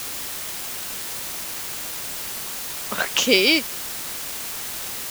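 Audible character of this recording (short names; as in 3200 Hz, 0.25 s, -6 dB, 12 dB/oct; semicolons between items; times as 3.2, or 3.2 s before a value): a quantiser's noise floor 6-bit, dither triangular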